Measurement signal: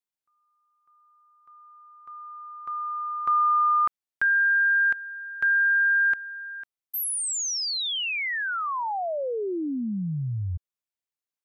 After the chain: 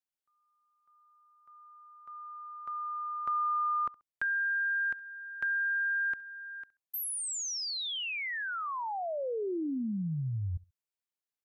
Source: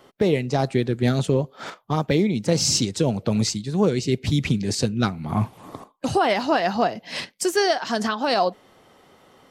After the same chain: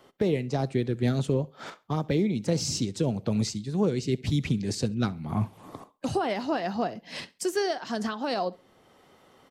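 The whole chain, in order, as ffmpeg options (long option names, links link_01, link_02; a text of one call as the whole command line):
ffmpeg -i in.wav -filter_complex "[0:a]aecho=1:1:67|134:0.0708|0.0177,acrossover=split=480[link_01][link_02];[link_02]acompressor=threshold=-34dB:ratio=1.5:release=988:knee=2.83:detection=peak[link_03];[link_01][link_03]amix=inputs=2:normalize=0,volume=-4.5dB" out.wav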